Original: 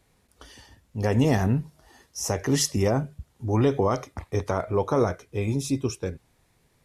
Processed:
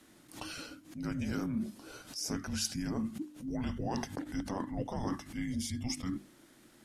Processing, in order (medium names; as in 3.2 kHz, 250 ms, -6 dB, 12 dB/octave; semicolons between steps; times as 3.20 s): frequency shift -370 Hz; bass shelf 100 Hz -10 dB; reverse; compression 5:1, threshold -40 dBFS, peak gain reduction 18 dB; reverse; hum notches 50/100/150/200/250/300 Hz; swell ahead of each attack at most 130 dB/s; trim +6 dB